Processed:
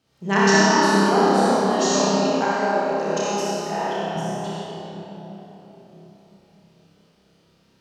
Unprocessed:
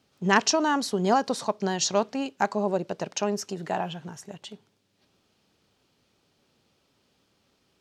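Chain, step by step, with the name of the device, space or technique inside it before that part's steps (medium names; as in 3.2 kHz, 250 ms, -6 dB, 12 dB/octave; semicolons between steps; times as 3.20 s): tunnel (flutter echo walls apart 5.2 m, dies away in 0.66 s; reverberation RT60 4.1 s, pre-delay 41 ms, DRR -7 dB); 2.52–4.16 s: peaking EQ 99 Hz -10 dB 2.3 oct; trim -4 dB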